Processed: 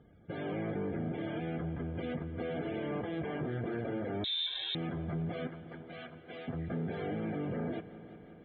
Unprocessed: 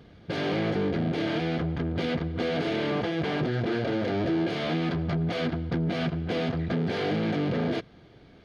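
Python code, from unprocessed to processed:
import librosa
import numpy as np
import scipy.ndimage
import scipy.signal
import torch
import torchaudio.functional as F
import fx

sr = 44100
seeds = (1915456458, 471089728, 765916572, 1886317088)

y = fx.highpass(x, sr, hz=1100.0, slope=6, at=(5.47, 6.48))
y = fx.spec_topn(y, sr, count=64)
y = fx.air_absorb(y, sr, metres=190.0)
y = fx.echo_heads(y, sr, ms=177, heads='first and second', feedback_pct=72, wet_db=-19.0)
y = fx.freq_invert(y, sr, carrier_hz=3900, at=(4.24, 4.75))
y = y * librosa.db_to_amplitude(-8.5)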